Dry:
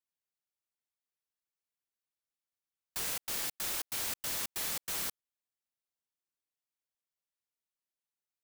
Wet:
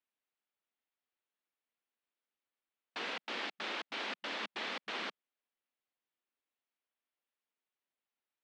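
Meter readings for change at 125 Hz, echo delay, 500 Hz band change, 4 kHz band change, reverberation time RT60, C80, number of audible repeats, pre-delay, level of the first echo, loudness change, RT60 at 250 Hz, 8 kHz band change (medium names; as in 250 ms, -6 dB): under -10 dB, no echo, +4.0 dB, -1.0 dB, no reverb, no reverb, no echo, no reverb, no echo, -5.5 dB, no reverb, -22.0 dB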